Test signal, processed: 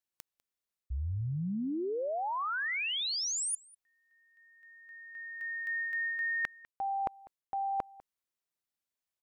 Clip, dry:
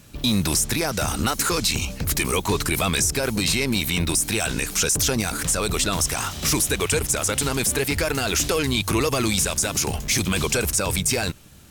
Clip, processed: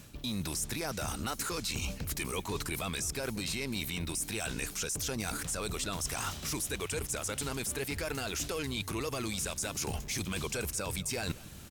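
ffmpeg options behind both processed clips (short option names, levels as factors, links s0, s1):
-filter_complex "[0:a]areverse,acompressor=threshold=0.0251:ratio=12,areverse,asplit=2[s0][s1];[s1]adelay=198.3,volume=0.0891,highshelf=f=4000:g=-4.46[s2];[s0][s2]amix=inputs=2:normalize=0"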